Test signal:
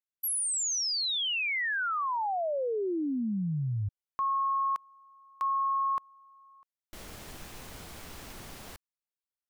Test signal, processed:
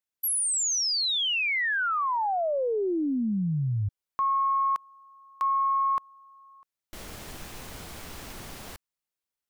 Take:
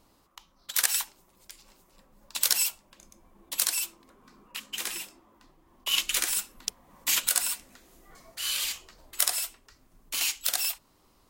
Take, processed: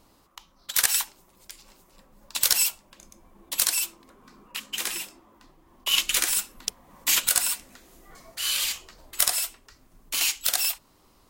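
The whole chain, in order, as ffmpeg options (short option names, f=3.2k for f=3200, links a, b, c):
-af "aeval=exprs='(tanh(2.51*val(0)+0.15)-tanh(0.15))/2.51':c=same,volume=4dB"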